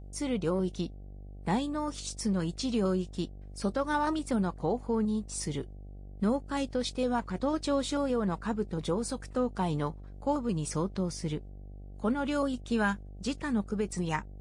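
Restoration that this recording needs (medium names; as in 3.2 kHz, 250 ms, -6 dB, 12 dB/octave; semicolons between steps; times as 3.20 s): de-hum 48.9 Hz, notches 16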